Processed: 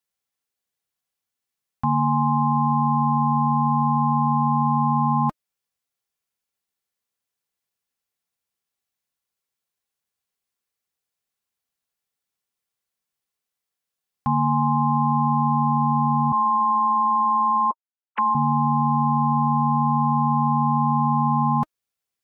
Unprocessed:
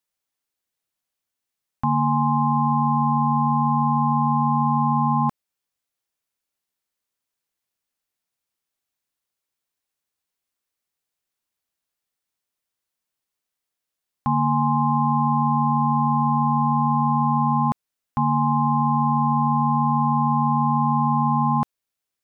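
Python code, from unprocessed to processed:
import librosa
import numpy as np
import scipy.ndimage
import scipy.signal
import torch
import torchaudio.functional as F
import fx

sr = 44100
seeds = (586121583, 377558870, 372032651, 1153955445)

y = fx.sine_speech(x, sr, at=(16.32, 18.35))
y = fx.notch_comb(y, sr, f0_hz=310.0)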